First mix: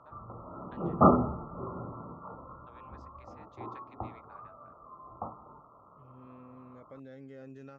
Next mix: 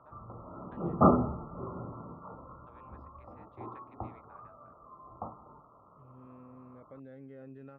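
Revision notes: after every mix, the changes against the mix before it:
master: add high-frequency loss of the air 460 metres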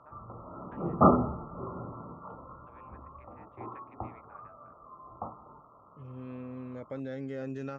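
first voice: add Butterworth low-pass 2,600 Hz 36 dB per octave
second voice +10.5 dB
master: remove high-frequency loss of the air 460 metres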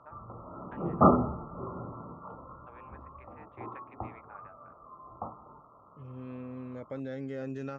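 first voice +5.0 dB

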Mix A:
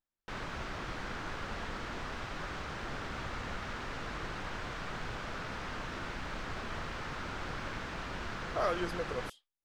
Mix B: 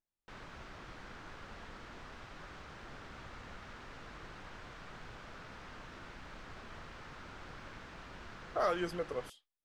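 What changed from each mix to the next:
background −10.0 dB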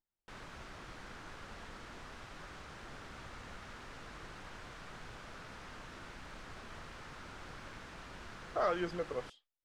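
background: remove high-frequency loss of the air 150 metres
master: add high-frequency loss of the air 93 metres

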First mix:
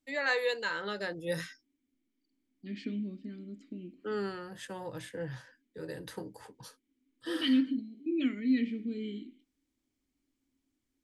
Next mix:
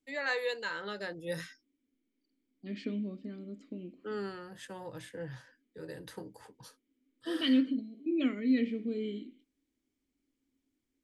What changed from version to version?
first voice −3.0 dB
second voice: add flat-topped bell 750 Hz +9.5 dB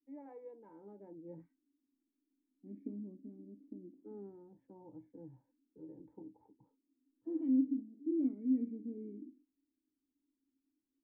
master: add formant resonators in series u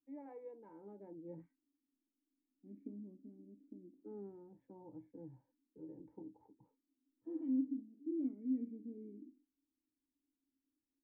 first voice: add parametric band 2,400 Hz +3 dB 0.42 octaves
second voice −5.0 dB

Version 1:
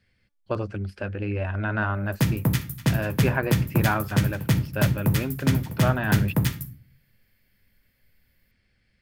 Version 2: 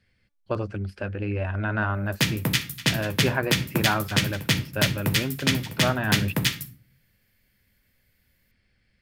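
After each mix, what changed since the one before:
background: add meter weighting curve D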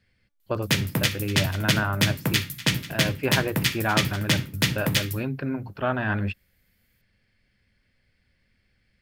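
background: entry −1.50 s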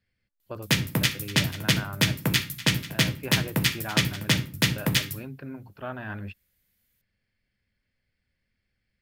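speech −10.0 dB

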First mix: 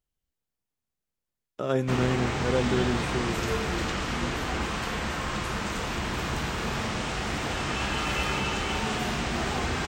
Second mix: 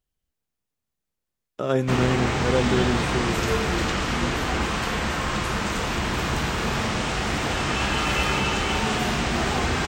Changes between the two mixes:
speech +3.5 dB
background +5.0 dB

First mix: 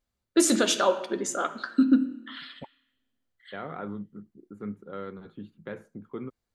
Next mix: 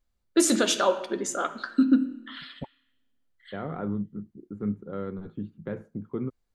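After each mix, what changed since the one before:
second voice: add spectral tilt −3 dB per octave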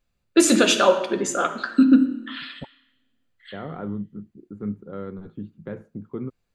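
first voice: send +9.5 dB

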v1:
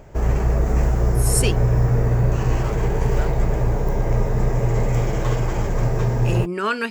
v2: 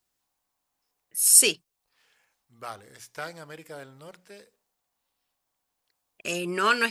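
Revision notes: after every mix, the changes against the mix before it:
background: muted
master: add spectral tilt +2.5 dB per octave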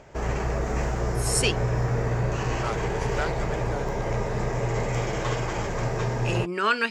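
second voice +5.5 dB
background: unmuted
master: add high-frequency loss of the air 92 metres

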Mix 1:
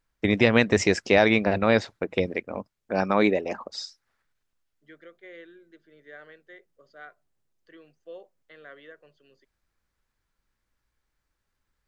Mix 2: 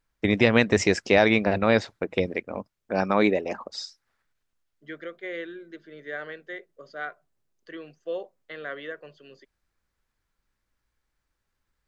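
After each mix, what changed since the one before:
second voice +11.0 dB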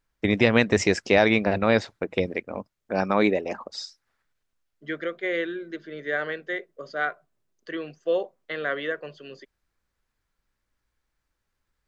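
second voice +7.5 dB

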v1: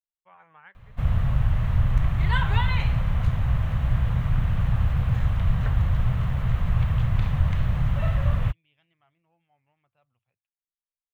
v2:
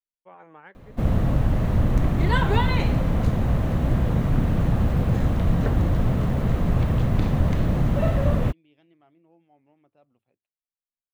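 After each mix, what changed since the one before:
master: remove drawn EQ curve 120 Hz 0 dB, 300 Hz −21 dB, 1,100 Hz −2 dB, 3,100 Hz 0 dB, 4,800 Hz −8 dB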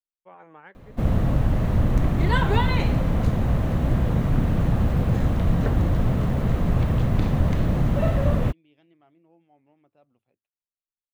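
nothing changed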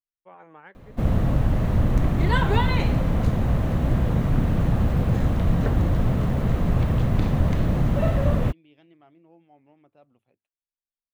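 second voice +4.5 dB

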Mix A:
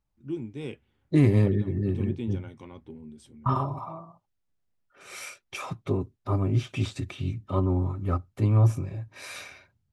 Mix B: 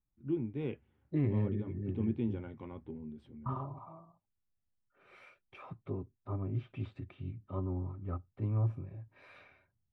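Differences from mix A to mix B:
second voice −11.0 dB
master: add high-frequency loss of the air 480 metres

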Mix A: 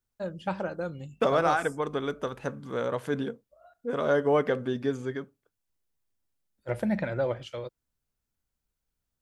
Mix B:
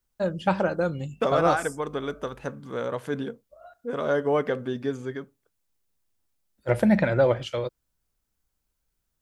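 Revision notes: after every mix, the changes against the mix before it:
first voice +8.0 dB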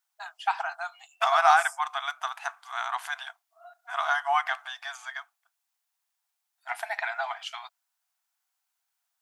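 second voice +7.0 dB
master: add linear-phase brick-wall high-pass 660 Hz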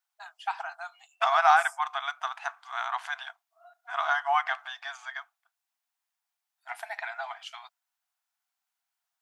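first voice −5.0 dB
second voice: add high-frequency loss of the air 77 metres

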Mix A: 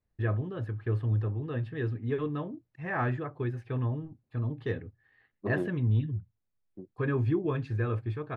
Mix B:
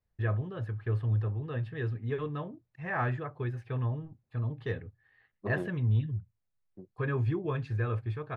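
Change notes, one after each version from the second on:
master: add parametric band 290 Hz −7.5 dB 0.79 octaves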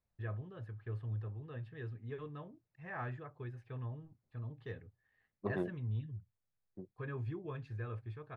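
first voice −11.0 dB

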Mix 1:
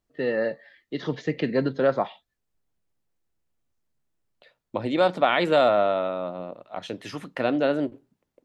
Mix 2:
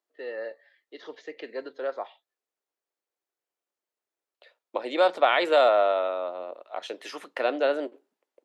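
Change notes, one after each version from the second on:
first voice −9.0 dB
master: add high-pass filter 380 Hz 24 dB per octave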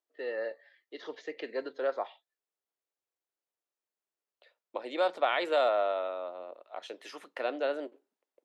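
second voice −7.0 dB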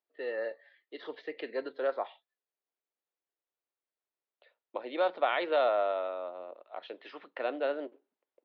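second voice: add high-frequency loss of the air 120 metres
master: add Butterworth low-pass 4,400 Hz 36 dB per octave

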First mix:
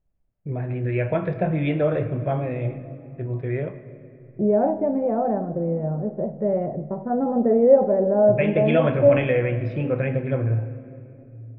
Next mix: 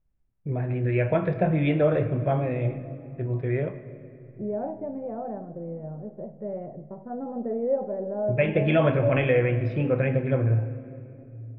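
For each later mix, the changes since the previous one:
second voice −11.0 dB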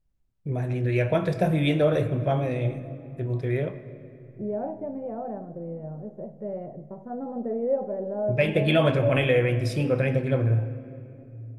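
master: remove low-pass filter 2,600 Hz 24 dB per octave

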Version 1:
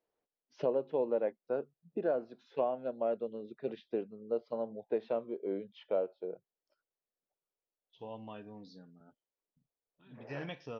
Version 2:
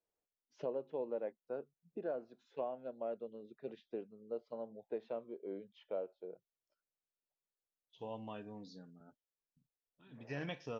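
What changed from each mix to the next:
first voice −8.0 dB
master: remove Butterworth low-pass 5,800 Hz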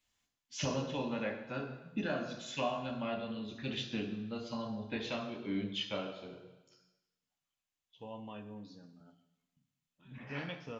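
first voice: remove resonant band-pass 470 Hz, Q 1.9
reverb: on, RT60 1.0 s

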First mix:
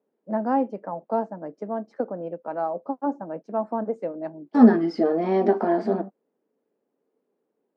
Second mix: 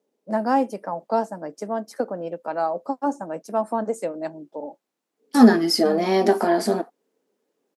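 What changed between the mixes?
second voice: entry +0.80 s
master: remove head-to-tape spacing loss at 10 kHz 43 dB

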